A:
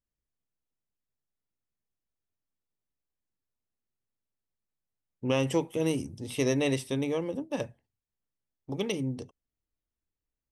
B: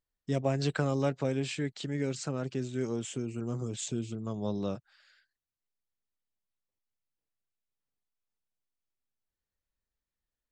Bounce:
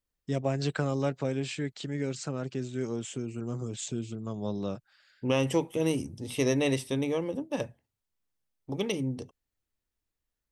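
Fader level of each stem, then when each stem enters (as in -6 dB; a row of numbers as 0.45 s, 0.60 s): +0.5 dB, 0.0 dB; 0.00 s, 0.00 s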